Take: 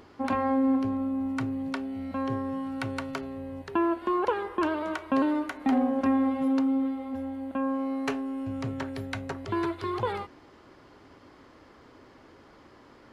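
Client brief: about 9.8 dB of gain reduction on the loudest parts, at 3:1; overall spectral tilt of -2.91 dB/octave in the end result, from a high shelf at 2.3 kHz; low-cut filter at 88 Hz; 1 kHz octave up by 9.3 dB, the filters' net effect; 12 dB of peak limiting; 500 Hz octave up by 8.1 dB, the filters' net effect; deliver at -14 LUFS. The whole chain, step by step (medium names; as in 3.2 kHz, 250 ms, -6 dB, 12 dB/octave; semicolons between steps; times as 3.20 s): high-pass 88 Hz; peaking EQ 500 Hz +7.5 dB; peaking EQ 1 kHz +7.5 dB; treble shelf 2.3 kHz +6.5 dB; compression 3:1, threshold -25 dBFS; trim +17 dB; peak limiter -5.5 dBFS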